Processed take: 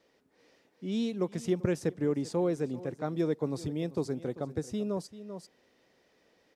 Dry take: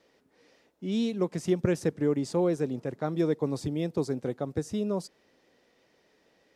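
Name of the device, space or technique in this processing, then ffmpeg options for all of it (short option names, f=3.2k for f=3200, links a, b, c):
ducked delay: -filter_complex "[0:a]asplit=3[a][b][c];[b]adelay=391,volume=-3dB[d];[c]apad=whole_len=306392[e];[d][e]sidechaincompress=threshold=-41dB:ratio=8:attack=16:release=483[f];[a][f]amix=inputs=2:normalize=0,volume=-3dB"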